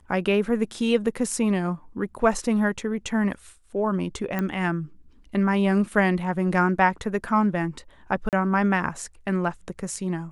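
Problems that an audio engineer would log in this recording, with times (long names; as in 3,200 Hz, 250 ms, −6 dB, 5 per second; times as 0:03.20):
0:04.39: click −14 dBFS
0:08.29–0:08.33: drop-out 38 ms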